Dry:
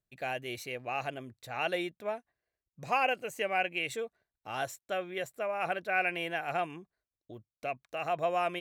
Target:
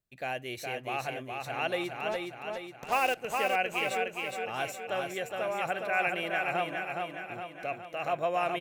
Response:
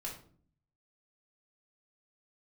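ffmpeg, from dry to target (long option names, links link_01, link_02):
-filter_complex "[0:a]asplit=3[link_01][link_02][link_03];[link_01]afade=type=out:start_time=2.11:duration=0.02[link_04];[link_02]acrusher=bits=5:mix=0:aa=0.5,afade=type=in:start_time=2.11:duration=0.02,afade=type=out:start_time=3.16:duration=0.02[link_05];[link_03]afade=type=in:start_time=3.16:duration=0.02[link_06];[link_04][link_05][link_06]amix=inputs=3:normalize=0,aecho=1:1:415|830|1245|1660|2075|2490|2905:0.631|0.341|0.184|0.0994|0.0537|0.029|0.0156,asplit=2[link_07][link_08];[1:a]atrim=start_sample=2205,atrim=end_sample=3087,asetrate=32193,aresample=44100[link_09];[link_08][link_09]afir=irnorm=-1:irlink=0,volume=-20.5dB[link_10];[link_07][link_10]amix=inputs=2:normalize=0"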